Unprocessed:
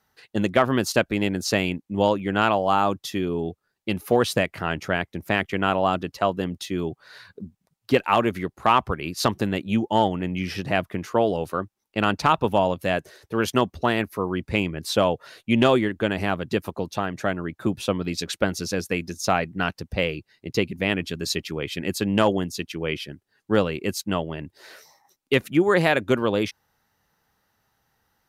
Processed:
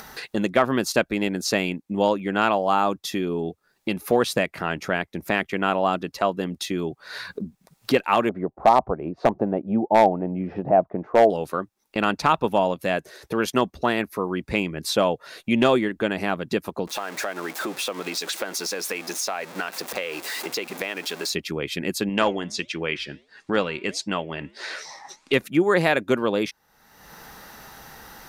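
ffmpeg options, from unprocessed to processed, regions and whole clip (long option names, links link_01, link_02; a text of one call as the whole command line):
ffmpeg -i in.wav -filter_complex "[0:a]asettb=1/sr,asplit=3[link_01][link_02][link_03];[link_01]atrim=end=8.294[link_04];[link_02]atrim=start=8.29:end=11.3,asetpts=PTS-STARTPTS,afade=type=in:duration=0.004:curve=qsin,afade=type=out:start_time=3.006:duration=0.004:curve=qsin,lowpass=frequency=720:width_type=q:width=2.8,aeval=exprs='0.501*(abs(mod(val(0)/0.501+3,4)-2)-1)':channel_layout=same[link_05];[link_03]atrim=start=11.296[link_06];[link_04][link_05]acrossfade=duration=0.004:curve1=hsin:curve2=qsin[link_07];[link_07][link_06]acrossfade=duration=0.004:curve1=qsin:curve2=hsin,asettb=1/sr,asplit=3[link_08][link_09][link_10];[link_08]atrim=end=16.874[link_11];[link_09]atrim=start=16.87:end=21.33,asetpts=PTS-STARTPTS,afade=type=in:duration=0.004:curve=qsin,afade=type=out:start_time=4.456:duration=0.004:curve=qsin,aeval=exprs='val(0)+0.5*0.0224*sgn(val(0))':channel_layout=same,highpass=460,acompressor=threshold=-29dB:ratio=2.5:attack=3.2:release=140:knee=1:detection=peak[link_12];[link_10]atrim=start=21.326[link_13];[link_11][link_12]acrossfade=duration=0.004:curve1=hsin:curve2=qsin[link_14];[link_14][link_13]acrossfade=duration=0.004:curve1=qsin:curve2=hsin,asettb=1/sr,asplit=3[link_15][link_16][link_17];[link_15]atrim=end=22.094[link_18];[link_16]atrim=start=22.09:end=25.33,asetpts=PTS-STARTPTS,afade=type=in:duration=0.004:curve=qsin,afade=type=out:start_time=3.236:duration=0.004:curve=qsin,lowpass=frequency=8800:width=0.5412,lowpass=frequency=8800:width=1.3066,equalizer=frequency=2300:width=0.38:gain=7.5,flanger=delay=3.5:depth=4.6:regen=-87:speed=1.5:shape=sinusoidal[link_19];[link_17]atrim=start=25.326[link_20];[link_18][link_19]acrossfade=duration=0.004:curve1=hsin:curve2=qsin[link_21];[link_21][link_20]acrossfade=duration=0.004:curve1=qsin:curve2=hsin,equalizer=frequency=96:width_type=o:width=0.6:gain=-13,bandreject=frequency=3000:width=19,acompressor=mode=upward:threshold=-22dB:ratio=2.5" out.wav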